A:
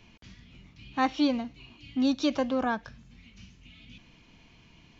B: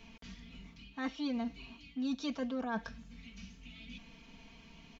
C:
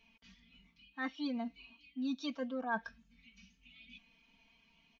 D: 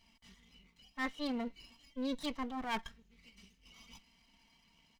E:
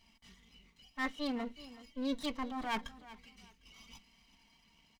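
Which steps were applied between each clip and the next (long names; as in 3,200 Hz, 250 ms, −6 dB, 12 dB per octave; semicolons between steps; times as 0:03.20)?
comb filter 4.4 ms, depth 73%; reversed playback; downward compressor 6 to 1, threshold −33 dBFS, peak gain reduction 13.5 dB; reversed playback; level −1 dB
low-shelf EQ 460 Hz −12 dB; every bin expanded away from the loudest bin 1.5 to 1; level +5 dB
lower of the sound and its delayed copy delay 1 ms; level +2 dB
repeating echo 376 ms, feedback 26%, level −17.5 dB; on a send at −16.5 dB: convolution reverb RT60 0.15 s, pre-delay 3 ms; on the sum: level +1 dB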